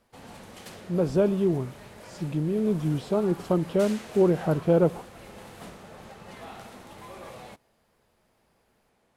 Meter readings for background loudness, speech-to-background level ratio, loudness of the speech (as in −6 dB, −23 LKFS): −44.5 LKFS, 19.0 dB, −25.5 LKFS